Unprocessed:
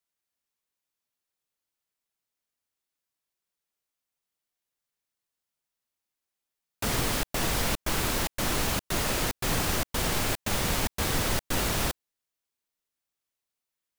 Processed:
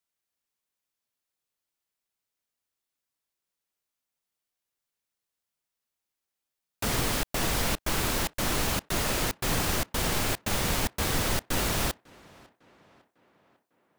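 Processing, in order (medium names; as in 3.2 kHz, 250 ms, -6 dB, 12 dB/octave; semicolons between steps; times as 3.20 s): tape echo 551 ms, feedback 58%, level -23 dB, low-pass 3.2 kHz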